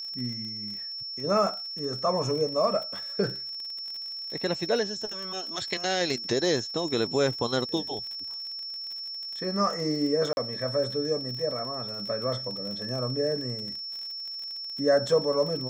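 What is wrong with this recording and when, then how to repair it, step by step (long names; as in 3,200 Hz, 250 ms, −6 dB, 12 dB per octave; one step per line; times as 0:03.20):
surface crackle 41 per second −35 dBFS
whistle 5,400 Hz −34 dBFS
0:10.33–0:10.37: drop-out 41 ms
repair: click removal
notch filter 5,400 Hz, Q 30
repair the gap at 0:10.33, 41 ms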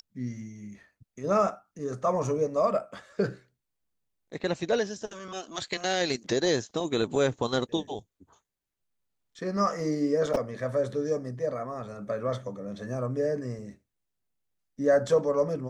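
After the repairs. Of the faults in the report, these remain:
none of them is left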